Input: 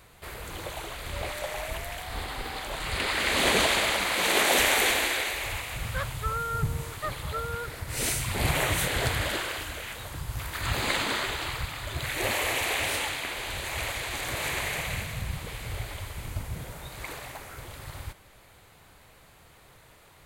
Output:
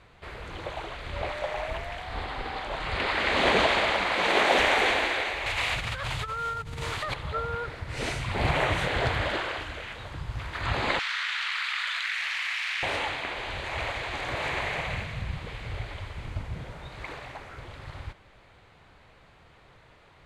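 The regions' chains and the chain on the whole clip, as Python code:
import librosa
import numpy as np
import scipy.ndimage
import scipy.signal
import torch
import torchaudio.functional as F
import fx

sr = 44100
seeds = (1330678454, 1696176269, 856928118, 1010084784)

y = fx.chain(x, sr, fx.over_compress(threshold_db=-35.0, ratio=-1.0),
    fx.high_shelf(hz=2100.0, db=12.0), at=(5.46, 7.14))
y = fx.chain(y, sr, fx.self_delay(depth_ms=0.07),
    fx.cheby2_highpass(hz=320.0, order=4, stop_db=70),
    fx.env_flatten(amount_pct=100), at=(10.99, 12.83))
y = scipy.signal.sosfilt(scipy.signal.butter(2, 3700.0, 'lowpass', fs=sr, output='sos'), y)
y = fx.dynamic_eq(y, sr, hz=770.0, q=0.86, threshold_db=-40.0, ratio=4.0, max_db=4)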